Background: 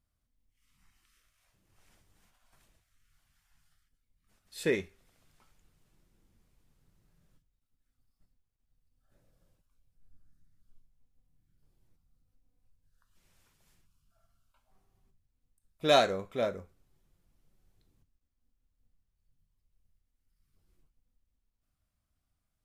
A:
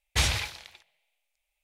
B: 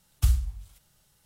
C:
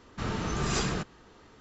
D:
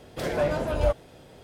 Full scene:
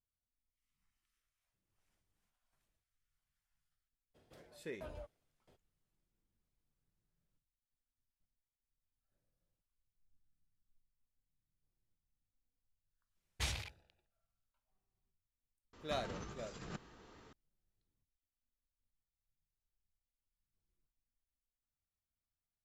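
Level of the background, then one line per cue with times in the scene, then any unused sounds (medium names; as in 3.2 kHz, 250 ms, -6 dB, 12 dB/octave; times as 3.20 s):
background -17 dB
4.14 s: add D -17 dB, fades 0.02 s + sawtooth tremolo in dB decaying 1.5 Hz, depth 36 dB
13.24 s: add A -13.5 dB + local Wiener filter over 41 samples
15.73 s: add C -11 dB + compressor with a negative ratio -35 dBFS, ratio -0.5
not used: B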